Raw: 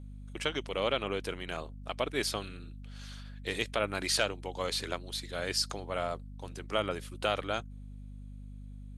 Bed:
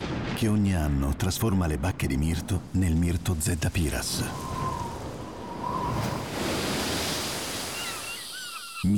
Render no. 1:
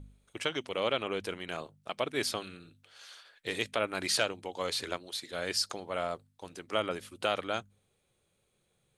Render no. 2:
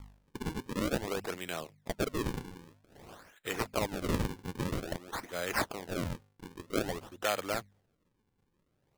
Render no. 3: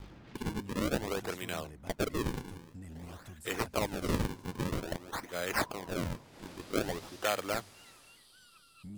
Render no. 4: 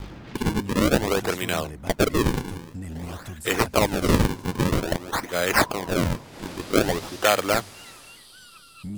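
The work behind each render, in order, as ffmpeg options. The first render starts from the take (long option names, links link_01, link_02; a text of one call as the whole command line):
ffmpeg -i in.wav -af "bandreject=frequency=50:width_type=h:width=4,bandreject=frequency=100:width_type=h:width=4,bandreject=frequency=150:width_type=h:width=4,bandreject=frequency=200:width_type=h:width=4,bandreject=frequency=250:width_type=h:width=4" out.wav
ffmpeg -i in.wav -filter_complex "[0:a]acrossover=split=550[link_01][link_02];[link_01]asoftclip=type=hard:threshold=-35dB[link_03];[link_03][link_02]amix=inputs=2:normalize=0,acrusher=samples=39:mix=1:aa=0.000001:lfo=1:lforange=62.4:lforate=0.51" out.wav
ffmpeg -i in.wav -i bed.wav -filter_complex "[1:a]volume=-23dB[link_01];[0:a][link_01]amix=inputs=2:normalize=0" out.wav
ffmpeg -i in.wav -af "volume=12dB" out.wav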